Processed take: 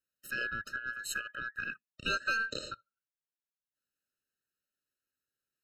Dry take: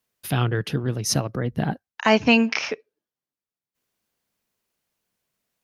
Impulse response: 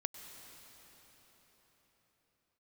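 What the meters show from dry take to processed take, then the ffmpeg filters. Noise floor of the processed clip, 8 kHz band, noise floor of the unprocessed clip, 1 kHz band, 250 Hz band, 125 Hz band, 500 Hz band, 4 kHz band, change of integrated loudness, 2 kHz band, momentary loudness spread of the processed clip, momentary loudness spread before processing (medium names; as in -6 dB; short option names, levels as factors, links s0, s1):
under -85 dBFS, -14.0 dB, under -85 dBFS, -13.5 dB, -28.5 dB, -29.0 dB, -22.0 dB, -12.0 dB, -13.0 dB, -5.5 dB, 10 LU, 11 LU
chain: -af "aeval=exprs='val(0)*sin(2*PI*1800*n/s)':c=same,aeval=exprs='0.668*(cos(1*acos(clip(val(0)/0.668,-1,1)))-cos(1*PI/2))+0.0106*(cos(8*acos(clip(val(0)/0.668,-1,1)))-cos(8*PI/2))':c=same,afftfilt=real='re*eq(mod(floor(b*sr/1024/620),2),0)':imag='im*eq(mod(floor(b*sr/1024/620),2),0)':win_size=1024:overlap=0.75,volume=0.398"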